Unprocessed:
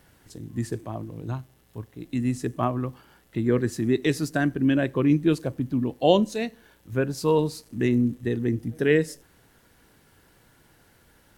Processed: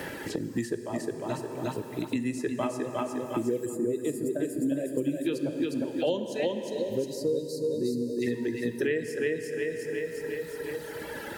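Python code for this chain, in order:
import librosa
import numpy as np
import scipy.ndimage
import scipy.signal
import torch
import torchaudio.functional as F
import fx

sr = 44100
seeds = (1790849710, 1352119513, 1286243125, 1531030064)

p1 = fx.spec_box(x, sr, start_s=2.77, length_s=2.47, low_hz=700.0, high_hz=6800.0, gain_db=-17)
p2 = p1 + fx.echo_feedback(p1, sr, ms=357, feedback_pct=42, wet_db=-3.0, dry=0)
p3 = fx.dereverb_blind(p2, sr, rt60_s=1.9)
p4 = fx.bass_treble(p3, sr, bass_db=-11, treble_db=0)
p5 = fx.spec_box(p4, sr, start_s=6.55, length_s=1.67, low_hz=620.0, high_hz=3700.0, gain_db=-28)
p6 = fx.peak_eq(p5, sr, hz=1100.0, db=-14.0, octaves=0.28)
p7 = fx.notch_comb(p6, sr, f0_hz=720.0)
p8 = fx.rev_plate(p7, sr, seeds[0], rt60_s=2.5, hf_ratio=0.75, predelay_ms=0, drr_db=8.0)
p9 = fx.band_squash(p8, sr, depth_pct=100)
y = p9 * 10.0 ** (-2.0 / 20.0)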